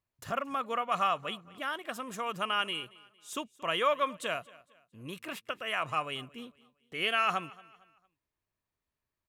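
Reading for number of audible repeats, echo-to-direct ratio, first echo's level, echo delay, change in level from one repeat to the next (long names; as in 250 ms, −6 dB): 2, −21.5 dB, −22.0 dB, 228 ms, −8.5 dB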